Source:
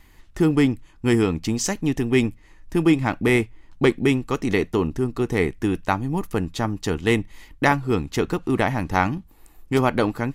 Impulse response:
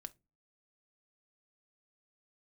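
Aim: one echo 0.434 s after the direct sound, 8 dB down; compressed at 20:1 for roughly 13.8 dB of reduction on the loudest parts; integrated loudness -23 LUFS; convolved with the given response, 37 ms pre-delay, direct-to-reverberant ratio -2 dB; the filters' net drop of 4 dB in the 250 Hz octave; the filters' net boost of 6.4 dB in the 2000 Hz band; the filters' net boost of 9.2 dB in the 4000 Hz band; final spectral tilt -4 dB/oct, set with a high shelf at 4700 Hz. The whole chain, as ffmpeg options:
-filter_complex "[0:a]equalizer=f=250:t=o:g=-5.5,equalizer=f=2k:t=o:g=4.5,equalizer=f=4k:t=o:g=6.5,highshelf=f=4.7k:g=8.5,acompressor=threshold=-24dB:ratio=20,aecho=1:1:434:0.398,asplit=2[a][b];[1:a]atrim=start_sample=2205,adelay=37[c];[b][c]afir=irnorm=-1:irlink=0,volume=7.5dB[d];[a][d]amix=inputs=2:normalize=0,volume=2.5dB"

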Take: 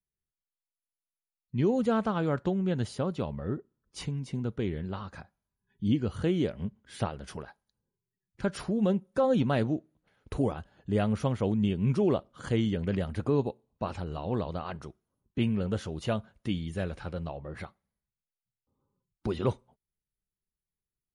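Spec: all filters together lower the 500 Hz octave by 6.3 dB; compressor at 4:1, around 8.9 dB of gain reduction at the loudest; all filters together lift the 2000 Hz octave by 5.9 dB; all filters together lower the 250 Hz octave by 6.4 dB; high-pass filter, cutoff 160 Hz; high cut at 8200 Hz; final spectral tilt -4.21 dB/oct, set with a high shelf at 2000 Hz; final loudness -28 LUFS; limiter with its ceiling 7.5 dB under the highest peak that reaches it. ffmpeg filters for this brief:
-af "highpass=160,lowpass=8.2k,equalizer=f=250:t=o:g=-5.5,equalizer=f=500:t=o:g=-6.5,highshelf=f=2k:g=4,equalizer=f=2k:t=o:g=6,acompressor=threshold=-37dB:ratio=4,volume=15dB,alimiter=limit=-14dB:level=0:latency=1"

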